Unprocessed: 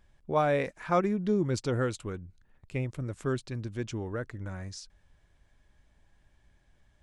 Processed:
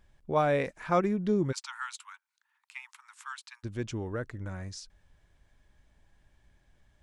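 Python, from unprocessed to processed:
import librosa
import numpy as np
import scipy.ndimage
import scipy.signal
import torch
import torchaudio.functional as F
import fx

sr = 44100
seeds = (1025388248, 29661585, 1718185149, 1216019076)

y = fx.steep_highpass(x, sr, hz=860.0, slope=96, at=(1.51, 3.63), fade=0.02)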